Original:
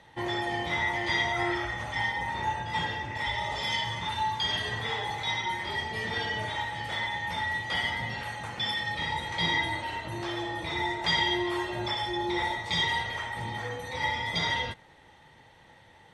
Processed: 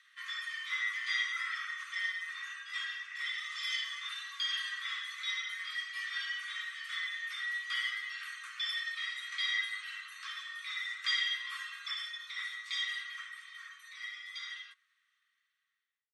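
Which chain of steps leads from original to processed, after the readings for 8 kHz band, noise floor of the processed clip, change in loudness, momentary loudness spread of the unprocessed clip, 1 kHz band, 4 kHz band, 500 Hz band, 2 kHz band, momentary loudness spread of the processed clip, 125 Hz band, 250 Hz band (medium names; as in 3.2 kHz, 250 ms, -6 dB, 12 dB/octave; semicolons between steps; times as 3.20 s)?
-4.5 dB, -80 dBFS, -6.5 dB, 7 LU, -19.5 dB, -5.0 dB, under -40 dB, -5.0 dB, 11 LU, under -40 dB, under -40 dB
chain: fade out at the end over 4.57 s; Chebyshev high-pass 1.1 kHz, order 10; trim -3.5 dB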